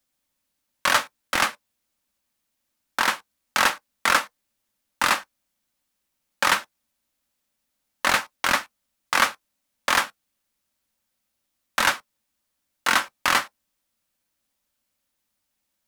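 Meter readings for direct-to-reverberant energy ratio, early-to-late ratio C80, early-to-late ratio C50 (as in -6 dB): 10.5 dB, 60.0 dB, 43.5 dB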